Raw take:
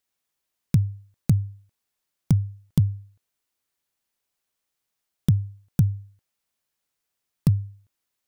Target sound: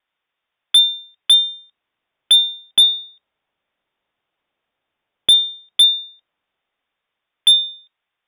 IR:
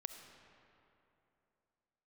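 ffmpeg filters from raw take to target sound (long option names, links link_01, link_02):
-filter_complex "[0:a]lowpass=frequency=3100:width_type=q:width=0.5098,lowpass=frequency=3100:width_type=q:width=0.6013,lowpass=frequency=3100:width_type=q:width=0.9,lowpass=frequency=3100:width_type=q:width=2.563,afreqshift=-3700,acrossover=split=750|2700[link_01][link_02][link_03];[link_01]dynaudnorm=framelen=210:gausssize=17:maxgain=8dB[link_04];[link_04][link_02][link_03]amix=inputs=3:normalize=0,asoftclip=type=hard:threshold=-16dB,volume=9dB"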